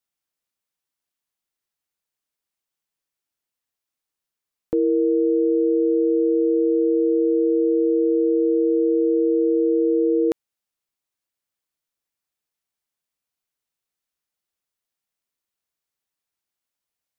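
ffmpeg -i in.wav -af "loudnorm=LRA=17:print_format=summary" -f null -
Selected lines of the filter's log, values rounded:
Input Integrated:    -19.7 LUFS
Input True Peak:     -12.7 dBTP
Input LRA:             9.7 LU
Input Threshold:     -29.8 LUFS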